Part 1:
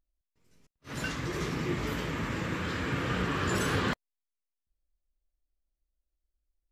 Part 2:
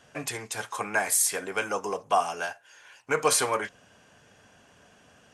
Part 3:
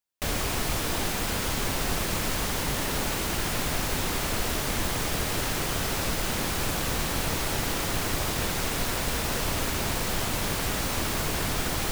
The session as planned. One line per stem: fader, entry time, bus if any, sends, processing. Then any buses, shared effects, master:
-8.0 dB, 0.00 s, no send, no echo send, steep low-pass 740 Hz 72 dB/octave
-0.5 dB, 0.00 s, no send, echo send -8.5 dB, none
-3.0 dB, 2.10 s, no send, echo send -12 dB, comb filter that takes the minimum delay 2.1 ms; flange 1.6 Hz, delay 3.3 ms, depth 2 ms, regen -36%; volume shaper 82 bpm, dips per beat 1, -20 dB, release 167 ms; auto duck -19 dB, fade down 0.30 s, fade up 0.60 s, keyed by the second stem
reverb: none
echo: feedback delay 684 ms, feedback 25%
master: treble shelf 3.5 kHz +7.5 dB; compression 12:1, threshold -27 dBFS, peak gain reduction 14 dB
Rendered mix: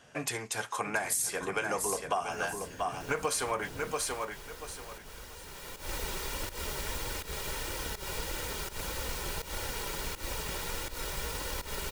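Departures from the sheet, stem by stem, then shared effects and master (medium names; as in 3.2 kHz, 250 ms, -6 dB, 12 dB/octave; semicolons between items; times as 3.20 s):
stem 1 -8.0 dB -> -14.5 dB; master: missing treble shelf 3.5 kHz +7.5 dB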